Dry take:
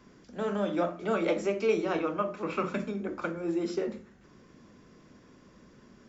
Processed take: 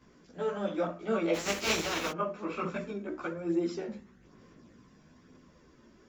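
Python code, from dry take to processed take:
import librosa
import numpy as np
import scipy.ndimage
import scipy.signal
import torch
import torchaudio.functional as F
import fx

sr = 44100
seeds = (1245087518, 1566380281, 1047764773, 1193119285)

y = fx.spec_flatten(x, sr, power=0.39, at=(1.33, 2.1), fade=0.02)
y = fx.chorus_voices(y, sr, voices=2, hz=0.56, base_ms=15, depth_ms=3.5, mix_pct=60)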